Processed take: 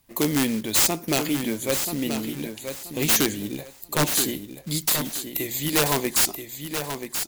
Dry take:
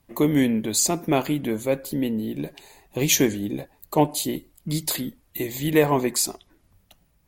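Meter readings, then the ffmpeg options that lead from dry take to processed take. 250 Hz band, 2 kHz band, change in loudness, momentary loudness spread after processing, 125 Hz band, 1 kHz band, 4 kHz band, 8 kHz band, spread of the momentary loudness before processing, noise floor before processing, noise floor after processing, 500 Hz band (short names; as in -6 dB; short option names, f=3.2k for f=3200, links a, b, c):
-3.0 dB, +2.5 dB, +0.5 dB, 13 LU, -2.5 dB, -2.0 dB, +3.5 dB, +1.5 dB, 12 LU, -64 dBFS, -47 dBFS, -4.0 dB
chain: -filter_complex "[0:a]acrusher=bits=5:mode=log:mix=0:aa=0.000001,highshelf=f=2.1k:g=9.5,aeval=exprs='(mod(2.82*val(0)+1,2)-1)/2.82':c=same,asplit=2[a][b];[b]aecho=0:1:981|1962|2943:0.398|0.0916|0.0211[c];[a][c]amix=inputs=2:normalize=0,volume=-3.5dB"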